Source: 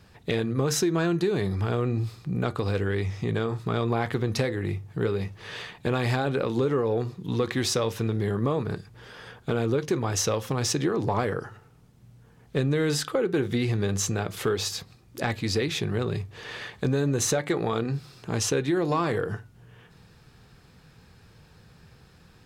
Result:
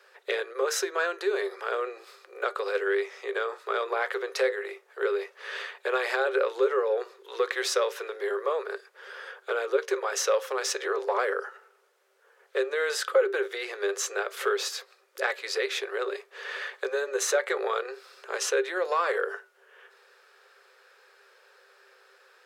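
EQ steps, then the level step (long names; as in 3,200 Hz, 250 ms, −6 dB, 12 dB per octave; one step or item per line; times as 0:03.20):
Chebyshev high-pass with heavy ripple 380 Hz, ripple 9 dB
+6.0 dB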